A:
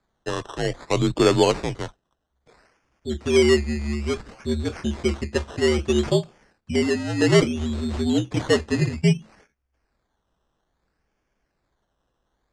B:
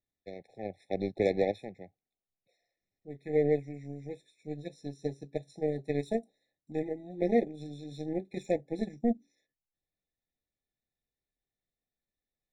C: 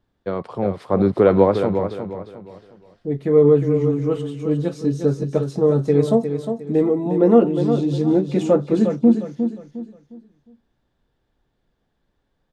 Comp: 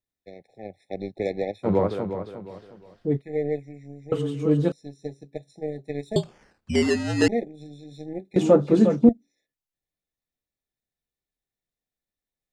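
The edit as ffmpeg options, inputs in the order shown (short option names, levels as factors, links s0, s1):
-filter_complex "[2:a]asplit=3[s0][s1][s2];[1:a]asplit=5[s3][s4][s5][s6][s7];[s3]atrim=end=1.69[s8];[s0]atrim=start=1.63:end=3.22[s9];[s4]atrim=start=3.16:end=4.122[s10];[s1]atrim=start=4.118:end=4.722[s11];[s5]atrim=start=4.718:end=6.162[s12];[0:a]atrim=start=6.158:end=7.282[s13];[s6]atrim=start=7.278:end=8.362[s14];[s2]atrim=start=8.358:end=9.092[s15];[s7]atrim=start=9.088[s16];[s8][s9]acrossfade=d=0.06:c1=tri:c2=tri[s17];[s17][s10]acrossfade=d=0.06:c1=tri:c2=tri[s18];[s18][s11]acrossfade=d=0.004:c1=hsin:c2=hsin[s19];[s19][s12]acrossfade=d=0.004:c1=hsin:c2=hsin[s20];[s20][s13]acrossfade=d=0.004:c1=hsin:c2=hsin[s21];[s21][s14]acrossfade=d=0.004:c1=hsin:c2=hsin[s22];[s22][s15]acrossfade=d=0.004:c1=hsin:c2=hsin[s23];[s23][s16]acrossfade=d=0.004:c1=hsin:c2=hsin"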